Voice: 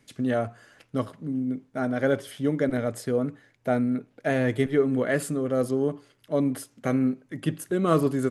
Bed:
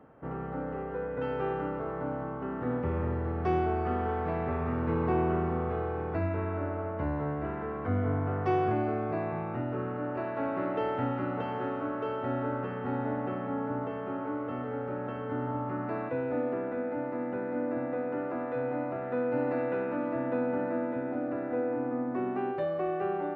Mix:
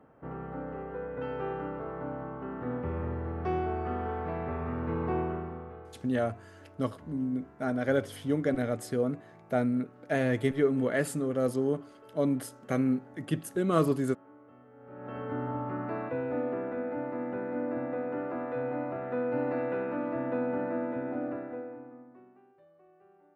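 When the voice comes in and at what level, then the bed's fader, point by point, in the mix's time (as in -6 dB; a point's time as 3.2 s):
5.85 s, -3.5 dB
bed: 5.18 s -3 dB
6.11 s -20.5 dB
14.75 s -20.5 dB
15.17 s -1 dB
21.27 s -1 dB
22.47 s -30 dB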